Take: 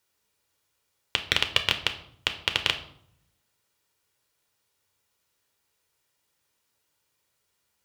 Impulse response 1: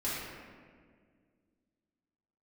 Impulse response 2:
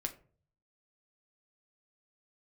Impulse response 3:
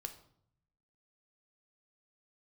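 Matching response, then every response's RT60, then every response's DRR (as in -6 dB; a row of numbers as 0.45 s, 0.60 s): 3; 1.9 s, 0.45 s, 0.65 s; -10.5 dB, 4.5 dB, 6.5 dB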